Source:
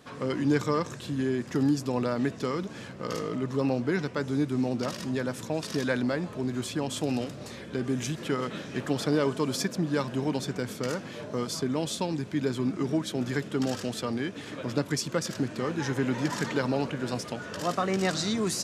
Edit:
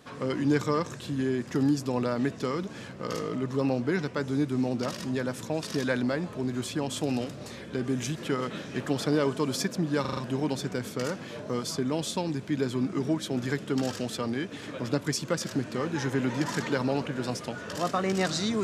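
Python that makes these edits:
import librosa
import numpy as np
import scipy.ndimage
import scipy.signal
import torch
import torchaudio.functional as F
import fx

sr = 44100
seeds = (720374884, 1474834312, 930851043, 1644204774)

y = fx.edit(x, sr, fx.stutter(start_s=10.01, slice_s=0.04, count=5), tone=tone)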